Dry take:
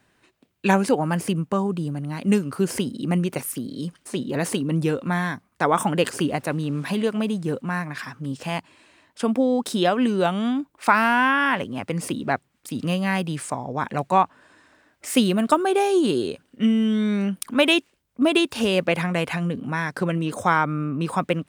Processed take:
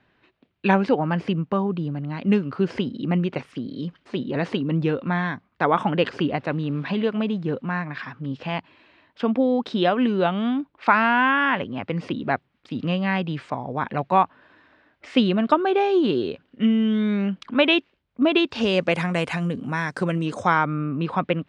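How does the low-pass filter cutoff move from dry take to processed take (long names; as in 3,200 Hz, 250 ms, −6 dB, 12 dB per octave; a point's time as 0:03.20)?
low-pass filter 24 dB per octave
0:18.35 3,900 Hz
0:18.99 8,700 Hz
0:20.14 8,700 Hz
0:20.85 3,900 Hz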